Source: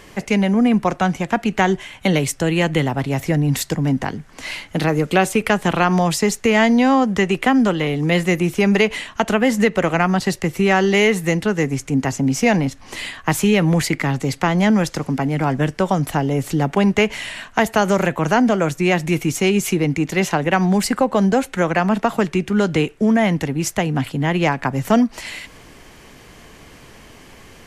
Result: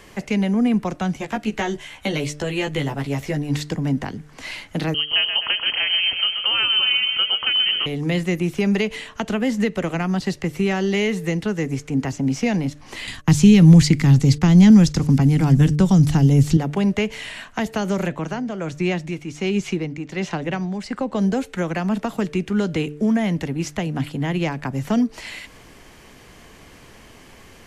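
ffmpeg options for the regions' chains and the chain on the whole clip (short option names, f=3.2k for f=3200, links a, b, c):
-filter_complex "[0:a]asettb=1/sr,asplit=3[a][b][c];[a]atrim=end=1.194[d];[b]atrim=start=1.19:end=3.57,asetpts=PTS-STARTPTS,afade=t=in:d=0.004:c=qsin,afade=t=out:st=2.376:d=0.004:c=qsin,equalizer=f=160:w=0.78:g=-5.5,asplit=2[e][f];[f]adelay=14,volume=-2.5dB[g];[e][g]amix=inputs=2:normalize=0,atrim=end_sample=104958[h];[c]atrim=start=3.566[i];[d][h]acrossfade=d=0.004:c1=hsin:c2=qsin[j];[j][i]acrossfade=d=0.004:c1=qsin:c2=hsin,asettb=1/sr,asplit=3[k][l][m];[k]atrim=end=4.944[n];[l]atrim=start=4.94:end=7.86,asetpts=PTS-STARTPTS,afade=t=in:d=0.004:c=qsin,afade=t=out:st=2.916:d=0.004:c=qsin,equalizer=f=370:w=6.8:g=6.5,aecho=1:1:129|258|387|516|645|774|903:0.398|0.231|0.134|0.0777|0.0451|0.0261|0.0152,atrim=end_sample=128772,lowpass=f=2.8k:t=q:w=0.5098,lowpass=f=2.8k:t=q:w=0.6013,lowpass=f=2.8k:t=q:w=0.9,lowpass=f=2.8k:t=q:w=2.563,afreqshift=-3300[o];[m]atrim=start=7.856[p];[n][o]acrossfade=d=0.004:c1=hsin:c2=qsin[q];[q][p]acrossfade=d=0.004:c1=qsin:c2=hsin,asettb=1/sr,asplit=3[r][s][t];[r]atrim=end=13.074[u];[s]atrim=start=13.07:end=16.57,asetpts=PTS-STARTPTS,afade=t=in:d=0.004:c=qsin,afade=t=out:st=3.496:d=0.004:c=qsin,agate=range=-22dB:threshold=-37dB:ratio=16:release=100:detection=peak,bass=f=250:g=14,treble=f=4k:g=14,bandreject=f=610:w=9.9[v];[t]atrim=start=16.566[w];[u][v]acrossfade=d=0.004:c1=hsin:c2=qsin[x];[x][w]acrossfade=d=0.004:c1=qsin:c2=hsin,asettb=1/sr,asplit=3[y][z][aa];[y]atrim=end=18.084[ab];[z]atrim=start=18.08:end=21.2,asetpts=PTS-STARTPTS,afade=t=in:d=0.004:c=qsin,afade=t=out:st=3.116:d=0.004:c=qsin,lowpass=6.6k,tremolo=f=1.3:d=0.62[ac];[aa]atrim=start=21.196[ad];[ab][ac]acrossfade=d=0.004:c1=hsin:c2=qsin[ae];[ae][ad]acrossfade=d=0.004:c1=qsin:c2=hsin,acrossover=split=5800[af][ag];[ag]acompressor=threshold=-43dB:ratio=4:attack=1:release=60[ah];[af][ah]amix=inputs=2:normalize=0,bandreject=f=148.6:t=h:w=4,bandreject=f=297.2:t=h:w=4,bandreject=f=445.8:t=h:w=4,bandreject=f=594.4:t=h:w=4,acrossover=split=390|3000[ai][aj][ak];[aj]acompressor=threshold=-30dB:ratio=2[al];[ai][al][ak]amix=inputs=3:normalize=0,volume=-2.5dB"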